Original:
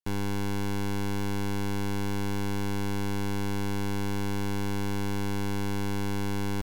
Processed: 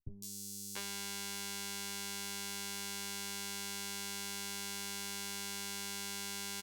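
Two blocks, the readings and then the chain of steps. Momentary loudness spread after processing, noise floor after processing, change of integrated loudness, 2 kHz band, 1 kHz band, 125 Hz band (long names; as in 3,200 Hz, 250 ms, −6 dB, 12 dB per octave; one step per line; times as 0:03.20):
1 LU, −46 dBFS, −8.0 dB, −6.0 dB, −11.5 dB, −23.0 dB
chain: guitar amp tone stack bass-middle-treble 10-0-10
harmonic generator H 4 −20 dB, 5 −13 dB, 7 −9 dB, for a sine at −23 dBFS
hard clipping −26.5 dBFS, distortion −18 dB
double-tracking delay 15 ms −3.5 dB
three-band delay without the direct sound lows, highs, mids 160/690 ms, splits 320/4,900 Hz
level +4 dB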